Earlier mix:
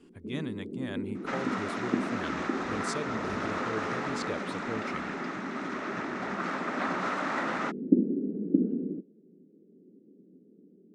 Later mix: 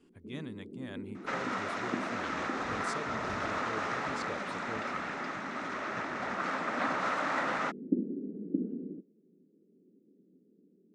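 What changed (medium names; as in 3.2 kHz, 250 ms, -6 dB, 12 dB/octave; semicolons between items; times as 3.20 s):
speech -6.0 dB; first sound -7.5 dB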